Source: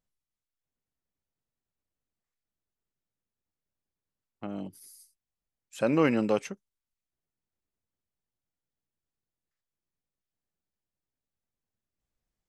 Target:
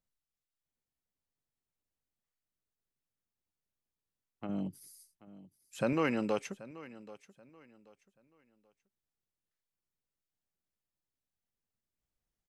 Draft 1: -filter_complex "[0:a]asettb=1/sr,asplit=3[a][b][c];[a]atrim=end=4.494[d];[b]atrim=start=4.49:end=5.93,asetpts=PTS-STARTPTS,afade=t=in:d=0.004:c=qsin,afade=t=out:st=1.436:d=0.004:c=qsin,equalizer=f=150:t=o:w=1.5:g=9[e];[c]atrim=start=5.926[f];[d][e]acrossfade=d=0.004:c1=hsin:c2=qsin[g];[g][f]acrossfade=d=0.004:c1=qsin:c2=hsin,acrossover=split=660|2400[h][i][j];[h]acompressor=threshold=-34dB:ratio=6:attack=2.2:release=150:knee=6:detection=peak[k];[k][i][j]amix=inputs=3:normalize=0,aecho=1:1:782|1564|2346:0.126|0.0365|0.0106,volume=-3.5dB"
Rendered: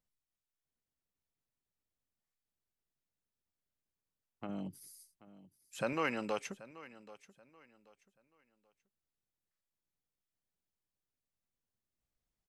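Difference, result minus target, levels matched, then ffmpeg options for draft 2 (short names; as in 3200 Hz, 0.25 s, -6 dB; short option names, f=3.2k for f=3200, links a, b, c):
compressor: peak gain reduction +8.5 dB
-filter_complex "[0:a]asettb=1/sr,asplit=3[a][b][c];[a]atrim=end=4.494[d];[b]atrim=start=4.49:end=5.93,asetpts=PTS-STARTPTS,afade=t=in:d=0.004:c=qsin,afade=t=out:st=1.436:d=0.004:c=qsin,equalizer=f=150:t=o:w=1.5:g=9[e];[c]atrim=start=5.926[f];[d][e]acrossfade=d=0.004:c1=hsin:c2=qsin[g];[g][f]acrossfade=d=0.004:c1=qsin:c2=hsin,acrossover=split=660|2400[h][i][j];[h]acompressor=threshold=-23.5dB:ratio=6:attack=2.2:release=150:knee=6:detection=peak[k];[k][i][j]amix=inputs=3:normalize=0,aecho=1:1:782|1564|2346:0.126|0.0365|0.0106,volume=-3.5dB"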